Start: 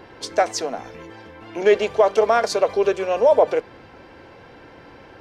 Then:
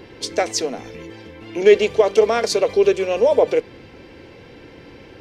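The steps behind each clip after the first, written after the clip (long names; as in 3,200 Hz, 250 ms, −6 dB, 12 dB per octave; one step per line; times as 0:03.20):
flat-topped bell 1,000 Hz −8.5 dB
level +4.5 dB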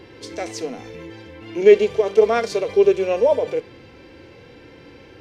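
harmonic and percussive parts rebalanced percussive −13 dB
level +1 dB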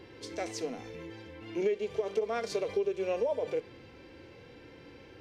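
downward compressor 12 to 1, threshold −19 dBFS, peak gain reduction 14 dB
level −7.5 dB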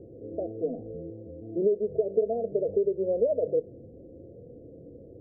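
Chebyshev low-pass with heavy ripple 680 Hz, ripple 3 dB
level +7 dB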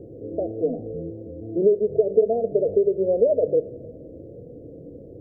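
rectangular room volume 3,400 cubic metres, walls mixed, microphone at 0.36 metres
level +6 dB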